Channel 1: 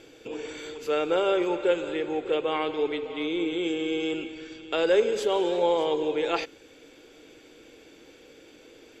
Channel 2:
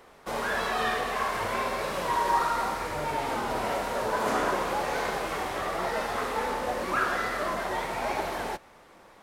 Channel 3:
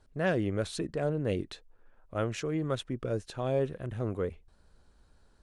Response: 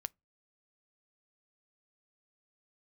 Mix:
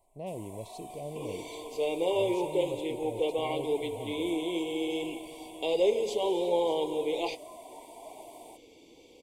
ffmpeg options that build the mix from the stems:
-filter_complex "[0:a]bandreject=f=2.6k:w=15,flanger=delay=3.9:depth=8.6:regen=-61:speed=0.43:shape=sinusoidal,adelay=900,volume=0.5dB[a];[1:a]highpass=120,highshelf=f=6.5k:t=q:w=3:g=11,aecho=1:1:3:0.64,volume=-19dB,asplit=2[b][c];[c]volume=-3dB[d];[2:a]volume=-3.5dB,asplit=2[e][f];[f]volume=-6dB[g];[b][e]amix=inputs=2:normalize=0,bandpass=f=740:t=q:w=2.5:csg=0,alimiter=level_in=15.5dB:limit=-24dB:level=0:latency=1,volume=-15.5dB,volume=0dB[h];[3:a]atrim=start_sample=2205[i];[d][g]amix=inputs=2:normalize=0[j];[j][i]afir=irnorm=-1:irlink=0[k];[a][h][k]amix=inputs=3:normalize=0,asuperstop=centerf=1500:order=8:qfactor=1.3"

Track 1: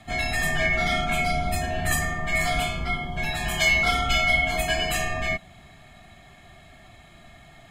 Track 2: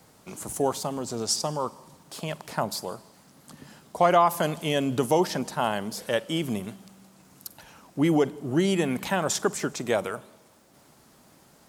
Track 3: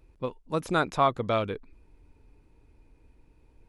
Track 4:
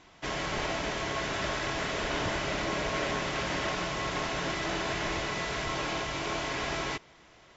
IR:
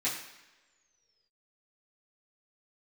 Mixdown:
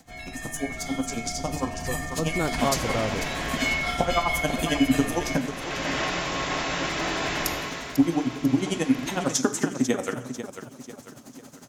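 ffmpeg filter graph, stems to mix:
-filter_complex "[0:a]volume=-13.5dB,asplit=2[a][b];[b]volume=-13dB[c];[1:a]equalizer=f=125:t=o:w=0.33:g=7,equalizer=f=250:t=o:w=0.33:g=12,equalizer=f=6.3k:t=o:w=0.33:g=9,acompressor=threshold=-27dB:ratio=6,aeval=exprs='val(0)*pow(10,-25*(0.5-0.5*cos(2*PI*11*n/s))/20)':c=same,volume=1.5dB,asplit=3[d][e][f];[d]atrim=end=5.52,asetpts=PTS-STARTPTS,afade=t=out:st=5.516:d=0.004:c=hsin[g];[e]atrim=start=5.52:end=6.83,asetpts=PTS-STARTPTS,volume=0[h];[f]atrim=start=6.83,asetpts=PTS-STARTPTS,afade=t=in:d=0.004:c=hsin[i];[g][h][i]concat=n=3:v=0:a=1,asplit=3[j][k][l];[k]volume=-11dB[m];[l]volume=-9dB[n];[2:a]equalizer=f=2.6k:t=o:w=2.6:g=-14.5,adelay=1650,volume=-5dB[o];[3:a]highshelf=f=12k:g=6.5,adelay=2350,volume=5.5dB,afade=t=out:st=3.65:d=0.31:silence=0.334965,afade=t=in:st=5.47:d=0.49:silence=0.223872,afade=t=out:st=7.35:d=0.63:silence=0.281838,asplit=2[p][q];[q]volume=-12dB[r];[4:a]atrim=start_sample=2205[s];[m][r]amix=inputs=2:normalize=0[t];[t][s]afir=irnorm=-1:irlink=0[u];[c][n]amix=inputs=2:normalize=0,aecho=0:1:495|990|1485|1980|2475|2970:1|0.43|0.185|0.0795|0.0342|0.0147[v];[a][j][o][p][u][v]amix=inputs=6:normalize=0,dynaudnorm=f=640:g=5:m=7dB"

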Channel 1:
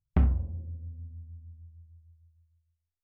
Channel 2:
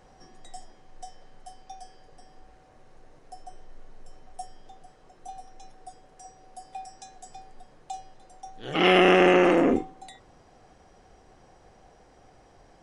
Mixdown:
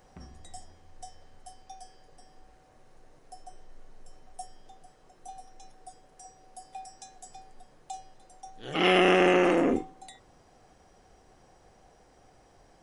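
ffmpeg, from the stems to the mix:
-filter_complex "[0:a]highpass=f=220:p=1,alimiter=limit=-21dB:level=0:latency=1:release=296,volume=-12.5dB[a];[1:a]highshelf=f=8.4k:g=10,volume=-3.5dB[b];[a][b]amix=inputs=2:normalize=0"

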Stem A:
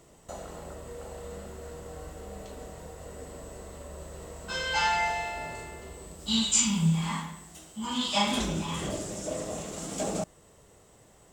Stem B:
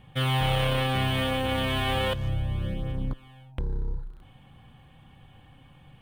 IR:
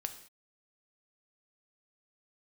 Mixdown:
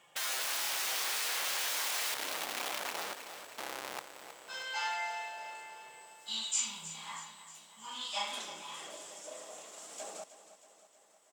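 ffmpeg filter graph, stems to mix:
-filter_complex "[0:a]volume=-8.5dB,asplit=2[a][b];[b]volume=-13.5dB[c];[1:a]aecho=1:1:5.8:0.49,aeval=exprs='(mod(20*val(0)+1,2)-1)/20':c=same,volume=-4dB,asplit=2[d][e];[e]volume=-10.5dB[f];[c][f]amix=inputs=2:normalize=0,aecho=0:1:316|632|948|1264|1580|1896|2212|2528|2844:1|0.59|0.348|0.205|0.121|0.0715|0.0422|0.0249|0.0147[g];[a][d][g]amix=inputs=3:normalize=0,highpass=710"

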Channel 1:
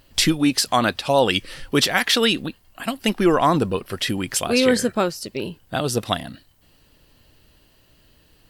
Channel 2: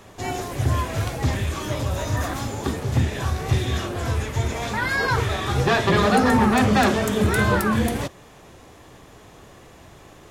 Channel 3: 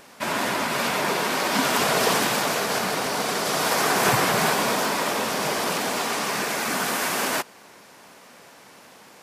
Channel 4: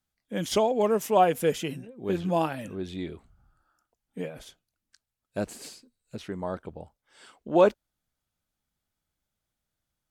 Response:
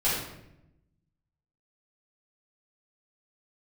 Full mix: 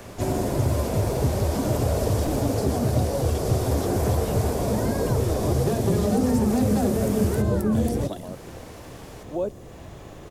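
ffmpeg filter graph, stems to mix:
-filter_complex "[0:a]alimiter=limit=-10dB:level=0:latency=1,aphaser=in_gain=1:out_gain=1:delay=4.5:decay=0.55:speed=1.9:type=triangular,adelay=2000,volume=-7.5dB[a];[1:a]lowshelf=f=350:g=7.5,volume=0dB[b];[2:a]volume=1.5dB[c];[3:a]adelay=1800,volume=-7dB[d];[a][b][c][d]amix=inputs=4:normalize=0,acrossover=split=310|630|5400[e][f][g][h];[e]acompressor=threshold=-22dB:ratio=4[i];[f]acompressor=threshold=-29dB:ratio=4[j];[g]acompressor=threshold=-47dB:ratio=4[k];[h]acompressor=threshold=-40dB:ratio=4[l];[i][j][k][l]amix=inputs=4:normalize=0,equalizer=f=570:w=1.8:g=4"

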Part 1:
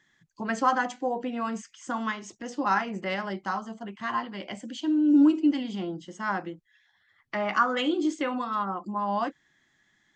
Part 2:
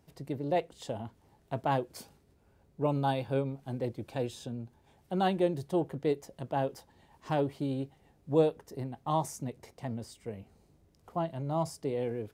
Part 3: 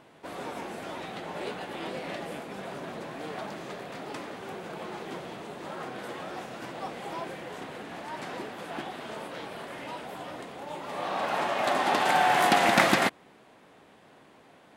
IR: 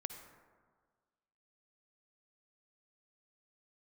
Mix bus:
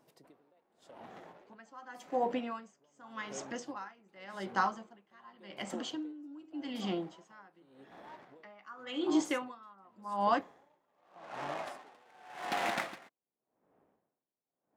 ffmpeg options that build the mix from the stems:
-filter_complex "[0:a]adelay=1100,volume=1dB,asplit=2[a][b];[b]volume=-20dB[c];[1:a]highpass=240,acompressor=threshold=-36dB:ratio=6,volume=-2.5dB[d];[2:a]adynamicsmooth=sensitivity=4.5:basefreq=750,volume=-9dB[e];[3:a]atrim=start_sample=2205[f];[c][f]afir=irnorm=-1:irlink=0[g];[a][d][e][g]amix=inputs=4:normalize=0,lowshelf=f=300:g=-7,aeval=exprs='val(0)*pow(10,-29*(0.5-0.5*cos(2*PI*0.87*n/s))/20)':c=same"

